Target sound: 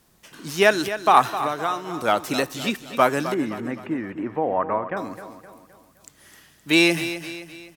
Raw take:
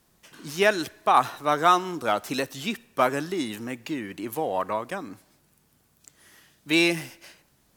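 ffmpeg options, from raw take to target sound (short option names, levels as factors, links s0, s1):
-filter_complex "[0:a]asettb=1/sr,asplit=3[s0][s1][s2];[s0]atrim=end=1.384[s3];[s1]atrim=start=1.38:end=1.99,asetpts=PTS-STARTPTS,afade=t=in:d=0.004:c=qsin,afade=t=out:st=0.606:d=0.004:c=qsin,acompressor=threshold=0.0398:ratio=4[s4];[s2]atrim=start=1.986[s5];[s3][s4]acrossfade=d=0.004:c1=hsin:c2=qsin[s6];[s6][s5]acrossfade=d=0.004:c1=qsin:c2=hsin,asettb=1/sr,asplit=3[s7][s8][s9];[s7]atrim=end=3.344[s10];[s8]atrim=start=3.34:end=4.97,asetpts=PTS-STARTPTS,afade=t=in:d=0.004:c=qsin,afade=t=out:st=1.626:d=0.004:c=qsin,lowpass=f=2000:w=0.5412,lowpass=f=2000:w=1.3066[s11];[s9]atrim=start=4.966[s12];[s10][s11]acrossfade=d=0.004:c1=hsin:c2=qsin[s13];[s13][s12]acrossfade=d=0.004:c1=qsin:c2=hsin,aecho=1:1:259|518|777|1036|1295:0.251|0.113|0.0509|0.0229|0.0103,volume=1.58"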